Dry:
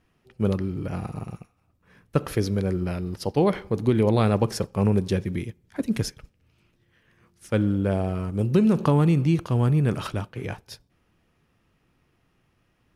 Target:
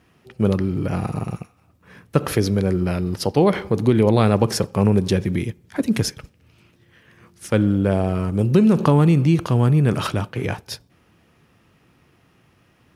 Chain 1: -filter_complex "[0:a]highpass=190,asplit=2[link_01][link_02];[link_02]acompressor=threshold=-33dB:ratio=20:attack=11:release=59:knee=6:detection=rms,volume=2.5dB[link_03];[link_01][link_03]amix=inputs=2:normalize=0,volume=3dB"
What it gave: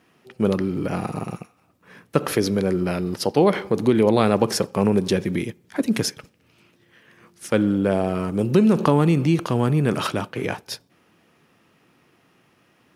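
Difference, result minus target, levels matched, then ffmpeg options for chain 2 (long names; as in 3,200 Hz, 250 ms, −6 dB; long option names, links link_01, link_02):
125 Hz band −4.0 dB
-filter_complex "[0:a]highpass=72,asplit=2[link_01][link_02];[link_02]acompressor=threshold=-33dB:ratio=20:attack=11:release=59:knee=6:detection=rms,volume=2.5dB[link_03];[link_01][link_03]amix=inputs=2:normalize=0,volume=3dB"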